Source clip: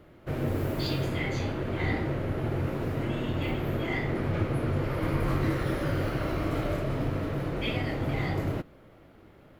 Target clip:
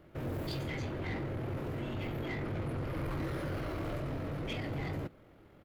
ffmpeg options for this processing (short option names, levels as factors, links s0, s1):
-af "atempo=1.7,asoftclip=type=tanh:threshold=0.0422,volume=0.631"